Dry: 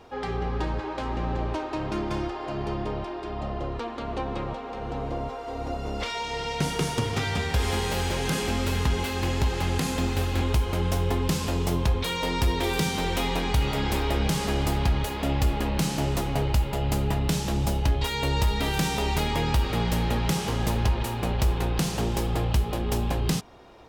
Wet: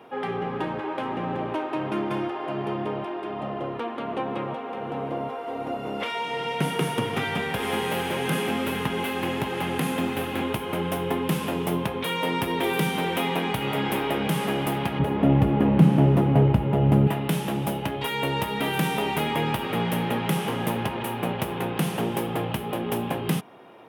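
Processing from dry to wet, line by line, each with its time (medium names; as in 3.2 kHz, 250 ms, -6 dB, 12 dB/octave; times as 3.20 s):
14.99–17.07 s: tilt EQ -4 dB/octave
whole clip: high-pass 140 Hz 24 dB/octave; high-order bell 5.6 kHz -13 dB 1.2 oct; trim +2.5 dB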